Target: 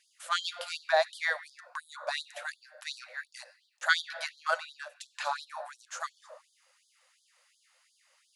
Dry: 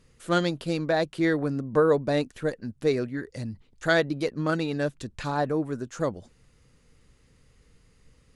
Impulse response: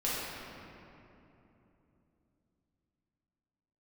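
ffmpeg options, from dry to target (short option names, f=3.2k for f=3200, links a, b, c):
-filter_complex "[0:a]asettb=1/sr,asplit=3[a][b][c];[a]atrim=end=4.574[d];[b]atrim=start=4.57:end=5.16,asetpts=PTS-STARTPTS,afade=t=in:d=0.004:c=qsin,afade=t=out:st=0.586:d=0.004:c=qsin,acompressor=threshold=-34dB:ratio=3[e];[c]atrim=start=5.156[f];[d][e]acrossfade=d=0.004:c1=hsin:c2=qsin[g];[g][f]acrossfade=d=0.004:c1=qsin:c2=hsin,asplit=2[h][i];[1:a]atrim=start_sample=2205,afade=t=out:st=0.4:d=0.01,atrim=end_sample=18081[j];[i][j]afir=irnorm=-1:irlink=0,volume=-20dB[k];[h][k]amix=inputs=2:normalize=0,afftfilt=real='re*gte(b*sr/1024,480*pow(3200/480,0.5+0.5*sin(2*PI*2.8*pts/sr)))':imag='im*gte(b*sr/1024,480*pow(3200/480,0.5+0.5*sin(2*PI*2.8*pts/sr)))':win_size=1024:overlap=0.75,volume=1dB"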